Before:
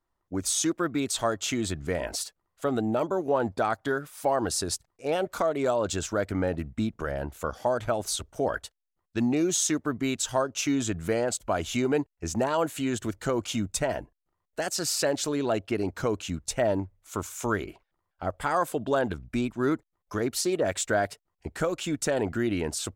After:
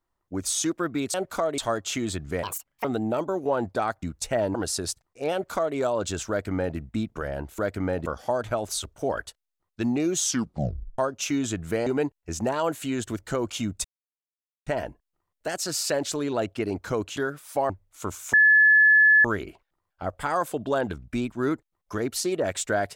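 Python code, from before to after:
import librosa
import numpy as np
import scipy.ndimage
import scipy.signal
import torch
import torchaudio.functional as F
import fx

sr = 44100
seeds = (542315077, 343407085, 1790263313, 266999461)

y = fx.edit(x, sr, fx.speed_span(start_s=1.99, length_s=0.68, speed=1.64),
    fx.swap(start_s=3.85, length_s=0.53, other_s=16.29, other_length_s=0.52),
    fx.duplicate(start_s=5.16, length_s=0.44, to_s=1.14),
    fx.duplicate(start_s=6.13, length_s=0.47, to_s=7.42),
    fx.tape_stop(start_s=9.59, length_s=0.76),
    fx.cut(start_s=11.23, length_s=0.58),
    fx.insert_silence(at_s=13.79, length_s=0.82),
    fx.insert_tone(at_s=17.45, length_s=0.91, hz=1720.0, db=-13.0), tone=tone)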